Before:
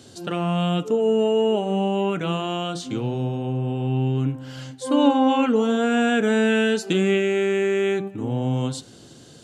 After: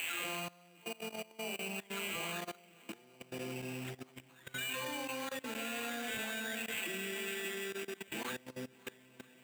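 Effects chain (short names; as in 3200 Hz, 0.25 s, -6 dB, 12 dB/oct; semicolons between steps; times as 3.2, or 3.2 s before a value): spectral delay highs early, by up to 0.971 s; notches 60/120/180/240 Hz; swung echo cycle 0.953 s, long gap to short 1.5:1, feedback 41%, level -11 dB; compressor 4:1, threshold -43 dBFS, peak gain reduction 20.5 dB; weighting filter D; spring tank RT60 3.4 s, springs 47 ms, chirp 65 ms, DRR 9.5 dB; level quantiser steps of 21 dB; low shelf 370 Hz -4 dB; sample-rate reducer 5300 Hz, jitter 0%; HPF 110 Hz 6 dB/oct; gain +3.5 dB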